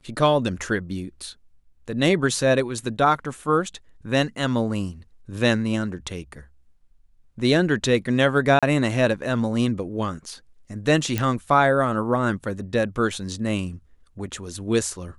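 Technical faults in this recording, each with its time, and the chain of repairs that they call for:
8.59–8.63 s: dropout 36 ms
11.18 s: pop -9 dBFS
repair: de-click; interpolate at 8.59 s, 36 ms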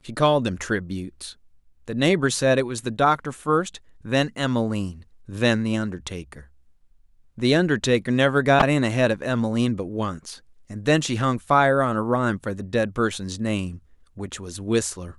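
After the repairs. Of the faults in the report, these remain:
nothing left

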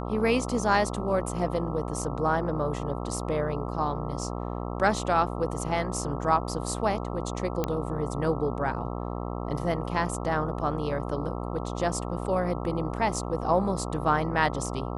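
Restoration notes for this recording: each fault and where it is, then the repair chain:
buzz 60 Hz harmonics 22 -33 dBFS
7.64 s: pop -13 dBFS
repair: de-click; de-hum 60 Hz, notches 22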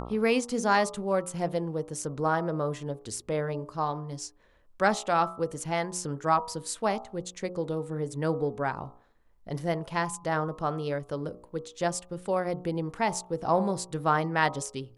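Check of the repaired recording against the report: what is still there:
nothing left

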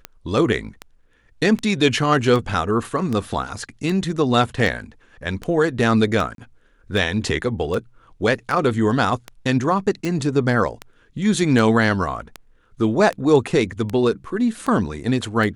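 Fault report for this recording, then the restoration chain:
tick 78 rpm -13 dBFS
6.35–6.38 s: dropout 32 ms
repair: de-click; interpolate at 6.35 s, 32 ms

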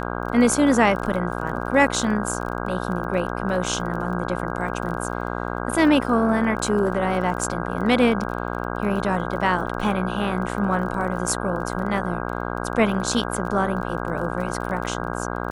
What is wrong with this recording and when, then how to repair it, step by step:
buzz 60 Hz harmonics 27 -28 dBFS
crackle 25 per s -31 dBFS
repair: de-click; de-hum 60 Hz, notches 27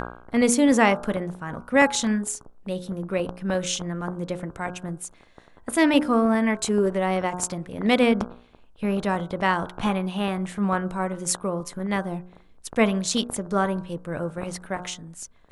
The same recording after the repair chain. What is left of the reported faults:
nothing left

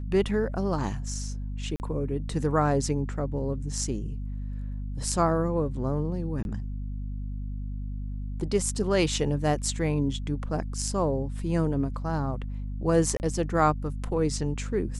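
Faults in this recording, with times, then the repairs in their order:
hum 50 Hz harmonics 5 -33 dBFS
1.76–1.80 s: dropout 39 ms
6.43–6.45 s: dropout 21 ms
13.17–13.20 s: dropout 29 ms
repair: de-hum 50 Hz, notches 5; interpolate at 1.76 s, 39 ms; interpolate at 6.43 s, 21 ms; interpolate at 13.17 s, 29 ms

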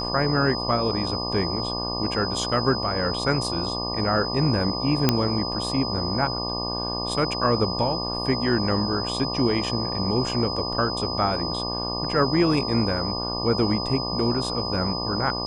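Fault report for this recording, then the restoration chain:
buzz 60 Hz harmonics 20 -31 dBFS
whine 5 kHz -29 dBFS
5.09 s: pop -3 dBFS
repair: de-click; de-hum 60 Hz, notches 20; band-stop 5 kHz, Q 30

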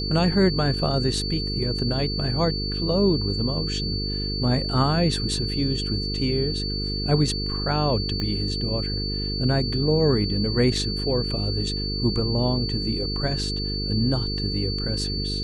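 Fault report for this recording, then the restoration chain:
buzz 50 Hz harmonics 9 -29 dBFS
whine 4.5 kHz -29 dBFS
8.20 s: pop -16 dBFS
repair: de-click; band-stop 4.5 kHz, Q 30; de-hum 50 Hz, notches 9

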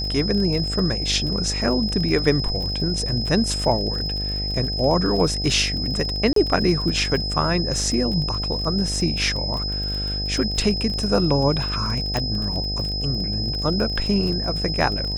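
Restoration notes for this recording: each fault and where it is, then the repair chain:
buzz 50 Hz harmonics 16 -28 dBFS
crackle 32 per s -27 dBFS
whine 5.1 kHz -26 dBFS
6.33–6.36 s: dropout 33 ms
12.17 s: pop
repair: de-click; de-hum 50 Hz, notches 16; band-stop 5.1 kHz, Q 30; interpolate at 6.33 s, 33 ms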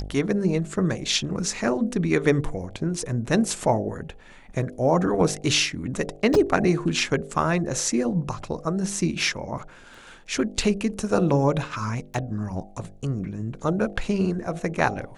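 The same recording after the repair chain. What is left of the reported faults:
nothing left

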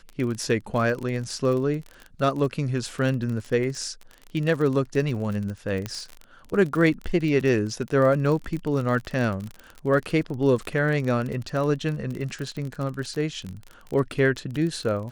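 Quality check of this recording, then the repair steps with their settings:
crackle 36 per s -29 dBFS
5.86 s: pop -15 dBFS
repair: de-click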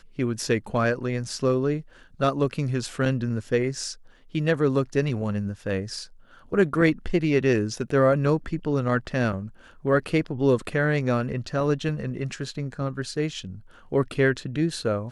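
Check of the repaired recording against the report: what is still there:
5.86 s: pop

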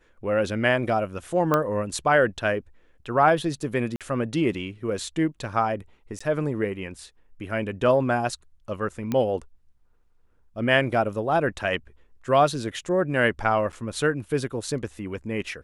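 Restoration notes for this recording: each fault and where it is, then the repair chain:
1.54 s: pop -9 dBFS
3.96–4.01 s: dropout 47 ms
6.19–6.21 s: dropout 15 ms
9.12 s: pop -14 dBFS
13.72–13.73 s: dropout 7.5 ms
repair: de-click; interpolate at 3.96 s, 47 ms; interpolate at 6.19 s, 15 ms; interpolate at 13.72 s, 7.5 ms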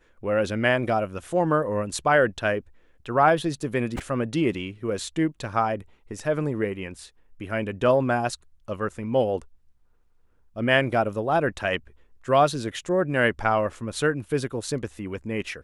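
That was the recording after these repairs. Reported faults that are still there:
nothing left

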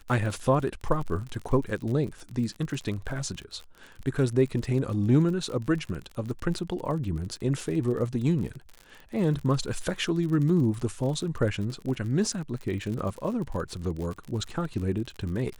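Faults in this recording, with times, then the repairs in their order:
crackle 48 per s -34 dBFS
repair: de-click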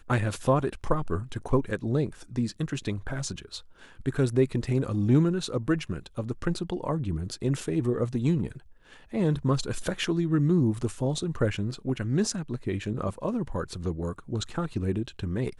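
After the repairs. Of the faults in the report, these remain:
nothing left

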